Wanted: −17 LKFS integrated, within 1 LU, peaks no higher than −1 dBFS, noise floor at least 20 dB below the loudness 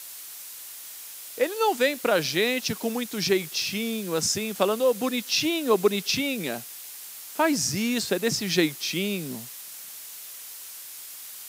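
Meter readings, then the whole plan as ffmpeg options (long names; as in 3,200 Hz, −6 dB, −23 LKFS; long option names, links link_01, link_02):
background noise floor −41 dBFS; target noise floor −45 dBFS; integrated loudness −25.0 LKFS; sample peak −7.5 dBFS; target loudness −17.0 LKFS
→ -af "afftdn=noise_reduction=6:noise_floor=-41"
-af "volume=8dB,alimiter=limit=-1dB:level=0:latency=1"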